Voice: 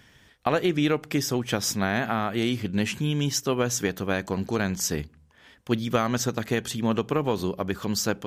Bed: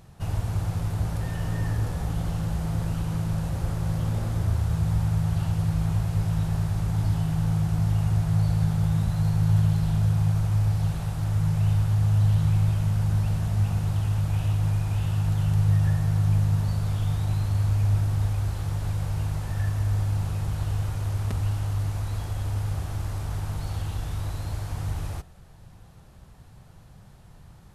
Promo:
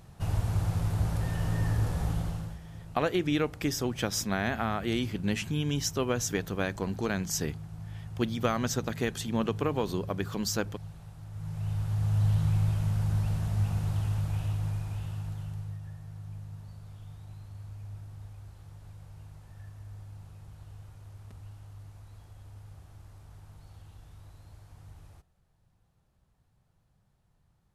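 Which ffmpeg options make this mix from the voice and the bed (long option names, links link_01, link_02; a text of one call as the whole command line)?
ffmpeg -i stem1.wav -i stem2.wav -filter_complex "[0:a]adelay=2500,volume=-4.5dB[link_01];[1:a]volume=12dB,afade=type=out:start_time=2.08:duration=0.51:silence=0.149624,afade=type=in:start_time=11.31:duration=0.97:silence=0.211349,afade=type=out:start_time=14.01:duration=1.79:silence=0.158489[link_02];[link_01][link_02]amix=inputs=2:normalize=0" out.wav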